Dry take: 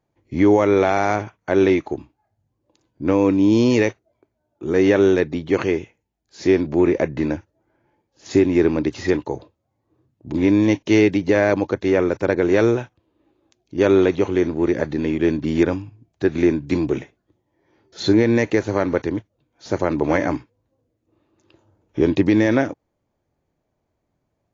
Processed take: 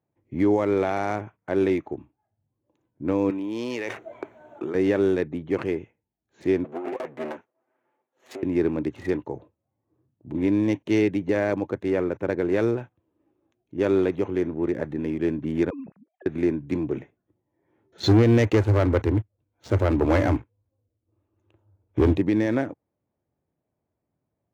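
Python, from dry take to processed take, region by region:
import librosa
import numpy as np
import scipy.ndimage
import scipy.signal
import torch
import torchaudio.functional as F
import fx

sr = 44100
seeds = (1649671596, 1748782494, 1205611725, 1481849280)

y = fx.chain(x, sr, fx.highpass(hz=1200.0, slope=6),
    fx.high_shelf(hz=5300.0, db=-9.0),
    fx.env_flatten(amount_pct=100), at=(3.3, 4.75))
y = fx.chain(y, sr, fx.lower_of_two(delay_ms=7.9),
    fx.highpass(hz=390.0, slope=12),
    fx.over_compress(threshold_db=-24.0, ratio=-1.0), at=(6.64, 8.43))
y = fx.chain(y, sr, fx.sine_speech(),
    fx.over_compress(threshold_db=-33.0, ratio=-1.0), at=(15.7, 16.26))
y = fx.chain(y, sr, fx.low_shelf_res(hz=120.0, db=6.5, q=3.0),
    fx.notch(hz=1800.0, q=19.0),
    fx.leveller(passes=2), at=(18.03, 22.17))
y = fx.wiener(y, sr, points=9)
y = scipy.signal.sosfilt(scipy.signal.butter(2, 79.0, 'highpass', fs=sr, output='sos'), y)
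y = fx.low_shelf(y, sr, hz=380.0, db=3.5)
y = F.gain(torch.from_numpy(y), -8.0).numpy()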